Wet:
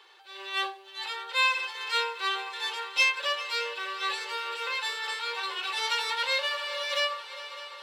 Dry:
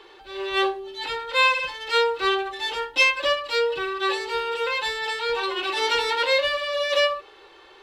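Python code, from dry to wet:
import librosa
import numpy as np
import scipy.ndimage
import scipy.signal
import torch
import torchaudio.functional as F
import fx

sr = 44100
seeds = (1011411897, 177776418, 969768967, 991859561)

y = scipy.signal.sosfilt(scipy.signal.butter(2, 780.0, 'highpass', fs=sr, output='sos'), x)
y = fx.high_shelf(y, sr, hz=4900.0, db=6.0)
y = fx.echo_heads(y, sr, ms=201, heads='second and third', feedback_pct=70, wet_db=-16.0)
y = y * 10.0 ** (-6.0 / 20.0)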